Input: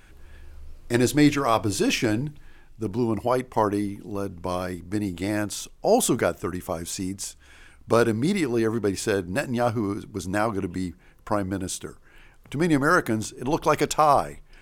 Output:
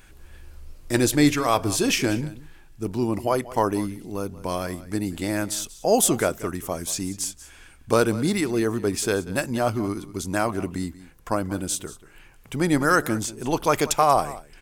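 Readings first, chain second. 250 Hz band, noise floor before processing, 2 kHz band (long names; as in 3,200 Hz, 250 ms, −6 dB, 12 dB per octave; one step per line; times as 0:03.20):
0.0 dB, −52 dBFS, +1.0 dB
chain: high-shelf EQ 5,000 Hz +7 dB
on a send: single-tap delay 186 ms −17.5 dB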